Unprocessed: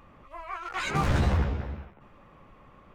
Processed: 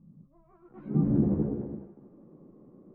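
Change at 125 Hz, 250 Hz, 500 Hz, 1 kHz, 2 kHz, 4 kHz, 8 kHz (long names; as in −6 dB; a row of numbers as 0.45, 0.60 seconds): −2.5 dB, +7.0 dB, −0.5 dB, −19.5 dB, below −30 dB, below −40 dB, below −35 dB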